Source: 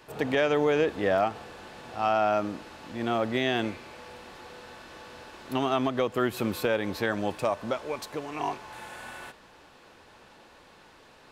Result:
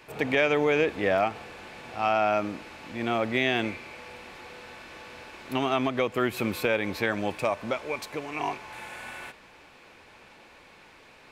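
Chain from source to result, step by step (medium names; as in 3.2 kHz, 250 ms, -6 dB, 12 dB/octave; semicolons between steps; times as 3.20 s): peaking EQ 2.3 kHz +9.5 dB 0.39 oct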